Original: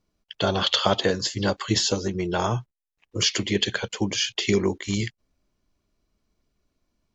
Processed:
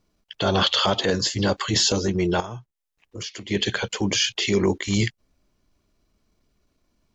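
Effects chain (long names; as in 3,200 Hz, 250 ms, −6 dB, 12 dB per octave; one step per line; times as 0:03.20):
0:02.40–0:03.51: downward compressor 16 to 1, threshold −36 dBFS, peak gain reduction 19.5 dB
brickwall limiter −15 dBFS, peak gain reduction 8 dB
transient designer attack −6 dB, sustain −1 dB
level +6 dB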